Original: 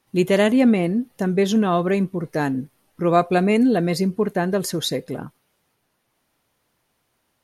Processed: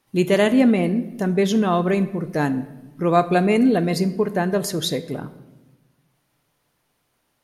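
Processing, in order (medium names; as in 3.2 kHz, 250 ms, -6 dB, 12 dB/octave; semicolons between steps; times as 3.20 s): simulated room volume 590 m³, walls mixed, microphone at 0.35 m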